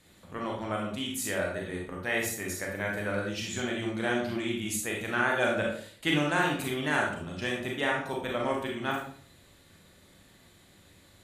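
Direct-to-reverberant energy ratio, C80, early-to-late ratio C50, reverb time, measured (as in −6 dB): −1.5 dB, 7.5 dB, 3.0 dB, 0.50 s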